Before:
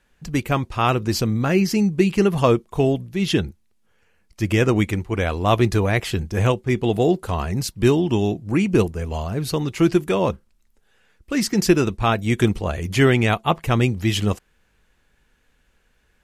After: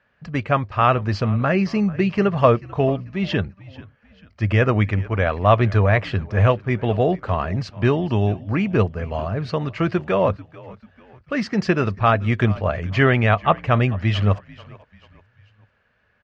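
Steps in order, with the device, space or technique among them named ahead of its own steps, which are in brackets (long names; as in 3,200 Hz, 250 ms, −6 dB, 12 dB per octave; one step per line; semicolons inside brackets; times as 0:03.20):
frequency-shifting delay pedal into a guitar cabinet (echo with shifted repeats 440 ms, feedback 43%, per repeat −69 Hz, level −20 dB; loudspeaker in its box 84–4,200 Hz, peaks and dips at 100 Hz +9 dB, 330 Hz −7 dB, 610 Hz +8 dB, 1,200 Hz +6 dB, 1,700 Hz +5 dB, 3,600 Hz −6 dB)
level −1 dB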